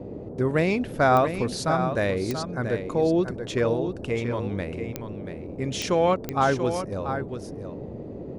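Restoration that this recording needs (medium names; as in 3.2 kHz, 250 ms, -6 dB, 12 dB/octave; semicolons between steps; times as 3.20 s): de-click; noise print and reduce 30 dB; inverse comb 684 ms -8.5 dB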